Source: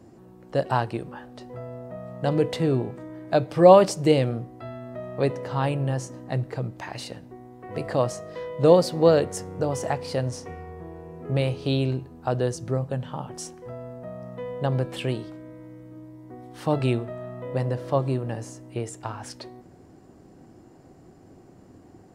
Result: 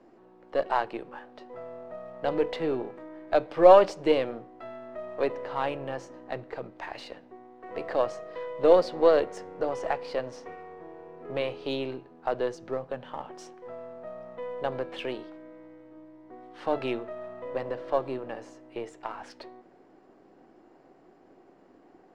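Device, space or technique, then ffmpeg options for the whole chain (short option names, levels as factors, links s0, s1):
crystal radio: -af "highpass=360,lowpass=3200,aeval=exprs='if(lt(val(0),0),0.708*val(0),val(0))':c=same"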